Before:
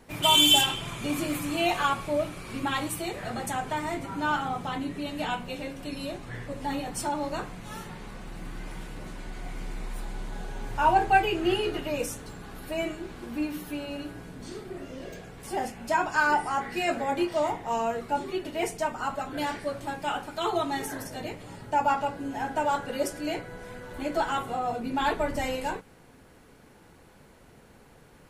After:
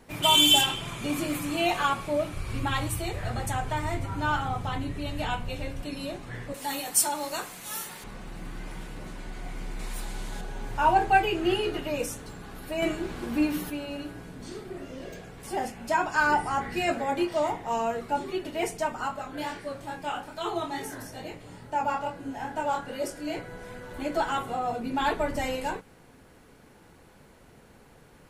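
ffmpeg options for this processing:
-filter_complex "[0:a]asettb=1/sr,asplit=3[a][b][c];[a]atrim=end=2.334[d];[b]atrim=start=2.33:end=5.82,asetpts=PTS-STARTPTS,afade=t=in:d=0.004:c=qsin,afade=t=out:st=3.486:d=0.004:c=qsin,lowshelf=f=130:t=q:w=1.5:g=12.5[e];[c]atrim=start=5.816[f];[d][e]acrossfade=d=0.004:c1=hsin:c2=qsin[g];[g][f]acrossfade=d=0.004:c1=qsin:c2=hsin,asettb=1/sr,asplit=3[h][i][j];[h]atrim=end=6.544[k];[i]atrim=start=6.54:end=8.04,asetpts=PTS-STARTPTS,afade=t=in:d=0.004:c=qsin,afade=t=out:st=1.496:d=0.004:c=qsin,aemphasis=mode=production:type=riaa[l];[j]atrim=start=8.036[m];[k][l]acrossfade=d=0.004:c1=hsin:c2=qsin[n];[n][m]acrossfade=d=0.004:c1=qsin:c2=hsin,asettb=1/sr,asplit=3[o][p][q];[o]atrim=end=9.794[r];[p]atrim=start=9.79:end=10.41,asetpts=PTS-STARTPTS,afade=t=in:d=0.004:c=qsin,afade=t=out:st=0.616:d=0.004:c=qsin,highshelf=f=2.5k:g=9[s];[q]atrim=start=10.406[t];[r][s]acrossfade=d=0.004:c1=hsin:c2=qsin[u];[u][t]acrossfade=d=0.004:c1=qsin:c2=hsin,asettb=1/sr,asplit=3[v][w][x];[v]atrim=end=12.824[y];[w]atrim=start=12.82:end=13.7,asetpts=PTS-STARTPTS,afade=t=in:d=0.004:c=qsin,afade=t=out:st=0.876:d=0.004:c=qsin,acontrast=34[z];[x]atrim=start=13.696[aa];[y][z]acrossfade=d=0.004:c1=hsin:c2=qsin[ab];[ab][aa]acrossfade=d=0.004:c1=qsin:c2=hsin,asettb=1/sr,asplit=3[ac][ad][ae];[ac]atrim=end=16.204[af];[ad]atrim=start=16.2:end=16.93,asetpts=PTS-STARTPTS,afade=t=in:d=0.004:c=qsin,afade=t=out:st=0.726:d=0.004:c=qsin,equalizer=f=62:w=0.57:g=10.5[ag];[ae]atrim=start=16.926[ah];[af][ag]acrossfade=d=0.004:c1=hsin:c2=qsin[ai];[ai][ah]acrossfade=d=0.004:c1=qsin:c2=hsin,asplit=3[aj][ak][al];[aj]afade=t=out:st=19.07:d=0.02[am];[ak]flanger=delay=22.5:depth=5:speed=2.3,afade=t=in:st=19.07:d=0.02,afade=t=out:st=23.35:d=0.02[an];[al]afade=t=in:st=23.35:d=0.02[ao];[am][an][ao]amix=inputs=3:normalize=0"

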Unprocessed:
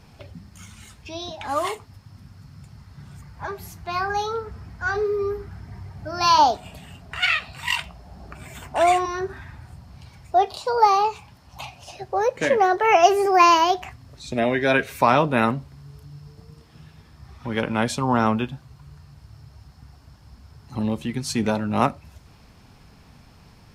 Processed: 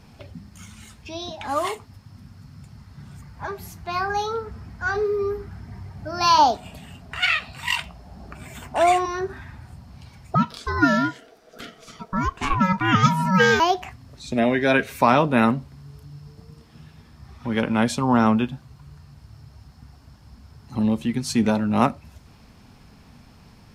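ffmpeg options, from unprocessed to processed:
-filter_complex "[0:a]asettb=1/sr,asplit=3[a][b][c];[a]atrim=end=10.354[d];[b]atrim=start=10.35:end=13.6,asetpts=PTS-STARTPTS,afade=t=in:d=0.004:c=qsin,afade=t=out:st=3.246:d=0.004:c=qsin,aeval=exprs='val(0)*sin(2*PI*560*n/s)':c=same[e];[c]atrim=start=13.596[f];[d][e]acrossfade=d=0.004:c1=hsin:c2=qsin[g];[g][f]acrossfade=d=0.004:c1=qsin:c2=hsin,equalizer=f=230:t=o:w=0.47:g=5"

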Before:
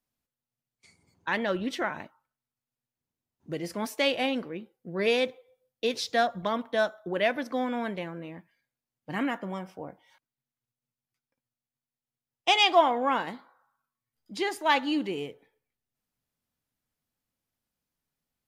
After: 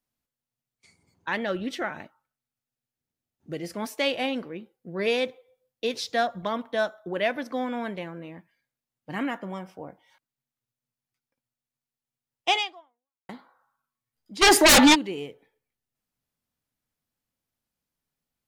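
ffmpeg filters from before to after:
-filter_complex "[0:a]asettb=1/sr,asplit=3[a][b][c];[a]atrim=end=1.374[d];[b]atrim=start=1.37:end=3.77,asetpts=PTS-STARTPTS,afade=t=in:d=0.004:c=qsin,afade=t=out:st=2.396:d=0.004:c=qsin,bandreject=f=1k:w=6.3[e];[c]atrim=start=3.766[f];[d][e]acrossfade=d=0.004:c1=hsin:c2=qsin[g];[g][f]acrossfade=d=0.004:c1=qsin:c2=hsin,asplit=3[h][i][j];[h]afade=t=out:st=14.41:d=0.02[k];[i]aeval=exprs='0.282*sin(PI/2*7.94*val(0)/0.282)':c=same,afade=t=in:st=14.41:d=0.02,afade=t=out:st=14.94:d=0.02[l];[j]afade=t=in:st=14.94:d=0.02[m];[k][l][m]amix=inputs=3:normalize=0,asplit=2[n][o];[n]atrim=end=13.29,asetpts=PTS-STARTPTS,afade=t=out:st=12.57:d=0.72:c=exp[p];[o]atrim=start=13.29,asetpts=PTS-STARTPTS,afade=t=in:d=0.004:c=hsin[q];[p][q]concat=n=2:v=0:a=1"

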